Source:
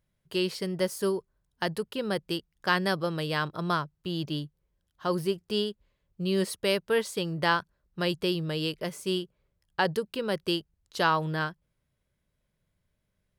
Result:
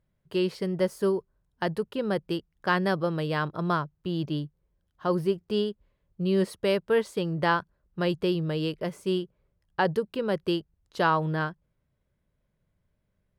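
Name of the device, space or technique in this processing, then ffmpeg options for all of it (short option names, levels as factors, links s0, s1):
through cloth: -af "highshelf=f=2500:g=-12,volume=1.41"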